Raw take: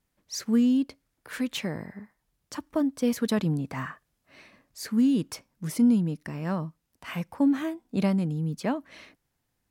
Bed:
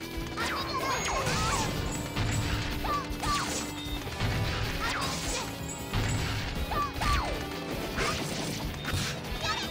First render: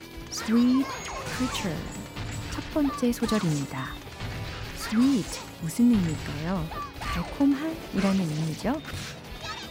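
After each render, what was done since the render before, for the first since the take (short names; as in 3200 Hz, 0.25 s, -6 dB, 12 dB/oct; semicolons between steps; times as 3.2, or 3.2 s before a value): add bed -5 dB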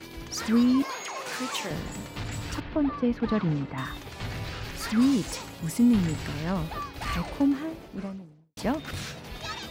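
0.82–1.71 HPF 350 Hz; 2.6–3.78 air absorption 330 m; 7.13–8.57 studio fade out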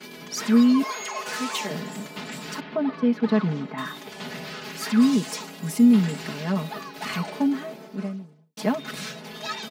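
HPF 150 Hz 24 dB/oct; comb 4.7 ms, depth 97%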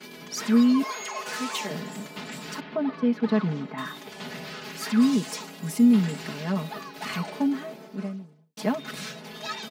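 gain -2 dB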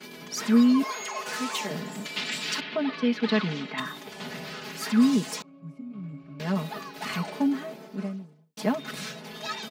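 2.05–3.8 weighting filter D; 5.42–6.4 octave resonator C#, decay 0.15 s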